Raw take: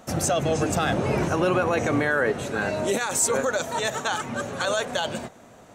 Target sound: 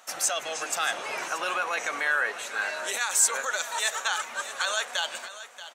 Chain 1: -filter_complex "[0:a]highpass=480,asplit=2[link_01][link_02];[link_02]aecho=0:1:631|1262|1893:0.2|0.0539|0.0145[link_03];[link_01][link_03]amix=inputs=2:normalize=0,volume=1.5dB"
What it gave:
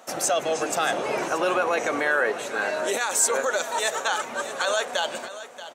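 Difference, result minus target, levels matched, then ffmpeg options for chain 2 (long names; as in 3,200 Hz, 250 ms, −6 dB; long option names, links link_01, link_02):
500 Hz band +9.0 dB
-filter_complex "[0:a]highpass=1200,asplit=2[link_01][link_02];[link_02]aecho=0:1:631|1262|1893:0.2|0.0539|0.0145[link_03];[link_01][link_03]amix=inputs=2:normalize=0,volume=1.5dB"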